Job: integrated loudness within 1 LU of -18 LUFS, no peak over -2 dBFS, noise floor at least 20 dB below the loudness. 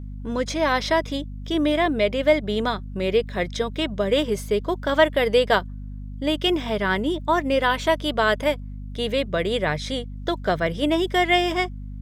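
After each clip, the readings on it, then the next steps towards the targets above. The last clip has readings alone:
hum 50 Hz; highest harmonic 250 Hz; hum level -31 dBFS; loudness -23.0 LUFS; peak level -5.5 dBFS; loudness target -18.0 LUFS
-> de-hum 50 Hz, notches 5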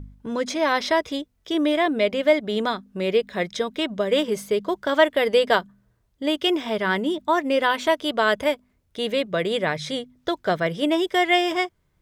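hum not found; loudness -23.0 LUFS; peak level -5.5 dBFS; loudness target -18.0 LUFS
-> trim +5 dB; peak limiter -2 dBFS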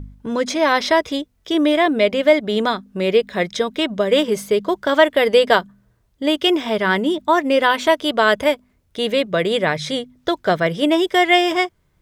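loudness -18.0 LUFS; peak level -2.0 dBFS; noise floor -62 dBFS

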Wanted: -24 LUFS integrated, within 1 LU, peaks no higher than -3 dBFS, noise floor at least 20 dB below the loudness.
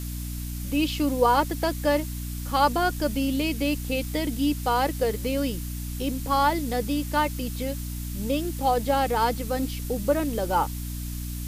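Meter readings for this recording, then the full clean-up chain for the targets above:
hum 60 Hz; highest harmonic 300 Hz; hum level -30 dBFS; noise floor -33 dBFS; noise floor target -46 dBFS; loudness -26.0 LUFS; peak level -8.0 dBFS; loudness target -24.0 LUFS
-> hum notches 60/120/180/240/300 Hz; noise reduction 13 dB, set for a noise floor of -33 dBFS; trim +2 dB

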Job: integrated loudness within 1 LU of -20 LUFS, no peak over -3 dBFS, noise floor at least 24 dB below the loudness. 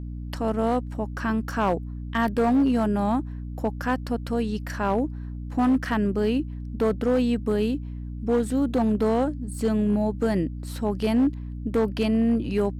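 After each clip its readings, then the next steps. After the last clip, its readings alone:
clipped samples 1.5%; clipping level -16.0 dBFS; hum 60 Hz; highest harmonic 300 Hz; hum level -32 dBFS; loudness -25.0 LUFS; peak level -16.0 dBFS; loudness target -20.0 LUFS
-> clip repair -16 dBFS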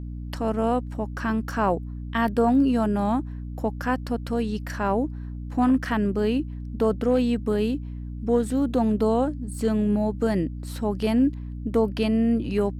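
clipped samples 0.0%; hum 60 Hz; highest harmonic 300 Hz; hum level -31 dBFS
-> hum notches 60/120/180/240/300 Hz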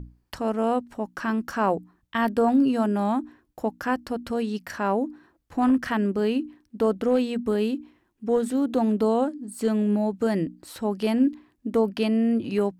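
hum not found; loudness -25.5 LUFS; peak level -11.0 dBFS; loudness target -20.0 LUFS
-> trim +5.5 dB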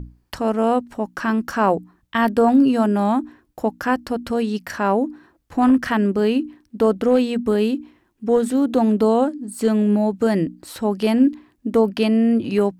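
loudness -20.0 LUFS; peak level -5.5 dBFS; noise floor -64 dBFS

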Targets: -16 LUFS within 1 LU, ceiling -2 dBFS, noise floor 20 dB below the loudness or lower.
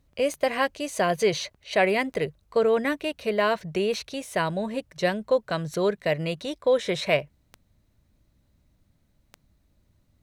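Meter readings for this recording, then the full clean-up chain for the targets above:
clicks found 6; loudness -26.0 LUFS; peak level -9.0 dBFS; loudness target -16.0 LUFS
-> de-click; trim +10 dB; peak limiter -2 dBFS

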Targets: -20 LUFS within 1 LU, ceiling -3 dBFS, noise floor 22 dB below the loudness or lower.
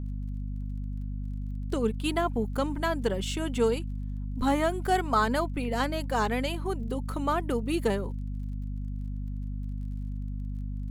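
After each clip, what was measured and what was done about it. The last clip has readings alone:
tick rate 23 per s; hum 50 Hz; highest harmonic 250 Hz; hum level -31 dBFS; loudness -30.5 LUFS; peak level -12.0 dBFS; loudness target -20.0 LUFS
-> de-click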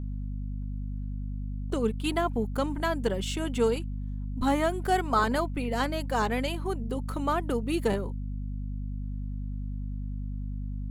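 tick rate 0.64 per s; hum 50 Hz; highest harmonic 250 Hz; hum level -31 dBFS
-> de-hum 50 Hz, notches 5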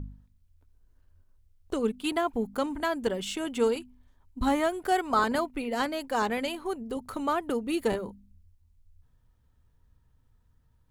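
hum not found; loudness -29.5 LUFS; peak level -13.0 dBFS; loudness target -20.0 LUFS
-> trim +9.5 dB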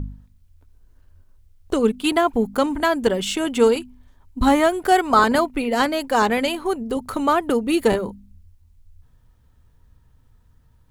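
loudness -20.0 LUFS; peak level -3.5 dBFS; noise floor -57 dBFS

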